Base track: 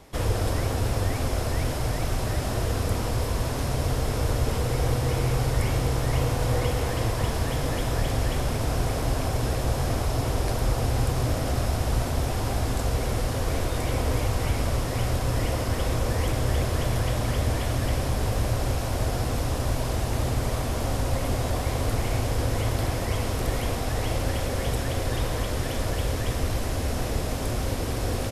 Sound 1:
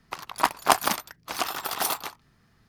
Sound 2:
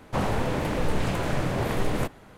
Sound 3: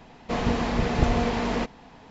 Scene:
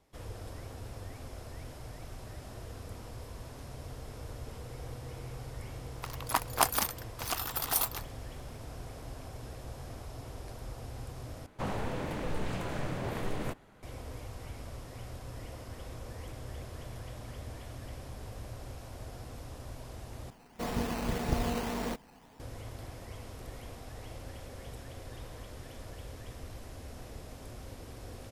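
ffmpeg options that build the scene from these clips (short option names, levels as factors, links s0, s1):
-filter_complex "[0:a]volume=0.119[s0];[1:a]highshelf=f=8400:g=11.5[s1];[3:a]acrusher=samples=10:mix=1:aa=0.000001:lfo=1:lforange=6:lforate=1.8[s2];[s0]asplit=3[s3][s4][s5];[s3]atrim=end=11.464[s6];[2:a]atrim=end=2.37,asetpts=PTS-STARTPTS,volume=0.355[s7];[s4]atrim=start=13.826:end=20.304[s8];[s2]atrim=end=2.1,asetpts=PTS-STARTPTS,volume=0.376[s9];[s5]atrim=start=22.396[s10];[s1]atrim=end=2.68,asetpts=PTS-STARTPTS,volume=0.398,afade=t=in:d=0.004:c=hsin,afade=t=out:st=2.676:d=0.004:c=hsin,adelay=5910[s11];[s6][s7]acrossfade=d=0.004:c1=hsin:c2=hsin[s12];[s12][s8]acrossfade=d=0.004:c1=hsin:c2=hsin[s13];[s13][s9]acrossfade=d=0.004:c1=hsin:c2=hsin[s14];[s14][s10]acrossfade=d=0.004:c1=hsin:c2=hsin[s15];[s15][s11]amix=inputs=2:normalize=0"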